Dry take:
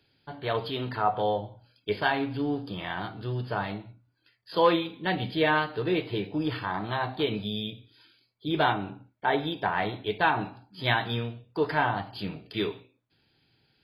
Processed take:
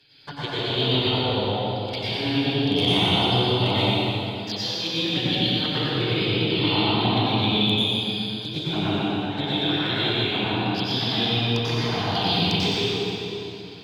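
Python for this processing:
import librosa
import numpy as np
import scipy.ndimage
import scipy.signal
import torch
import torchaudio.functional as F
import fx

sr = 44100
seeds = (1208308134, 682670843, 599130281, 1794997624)

p1 = fx.peak_eq(x, sr, hz=4100.0, db=11.5, octaves=2.2)
p2 = fx.over_compress(p1, sr, threshold_db=-30.0, ratio=-0.5)
p3 = fx.env_flanger(p2, sr, rest_ms=7.8, full_db=-27.5)
p4 = fx.clip_asym(p3, sr, top_db=-18.5, bottom_db=-15.5)
p5 = p4 + fx.echo_single(p4, sr, ms=119, db=-4.5, dry=0)
y = fx.rev_plate(p5, sr, seeds[0], rt60_s=3.0, hf_ratio=0.85, predelay_ms=80, drr_db=-8.5)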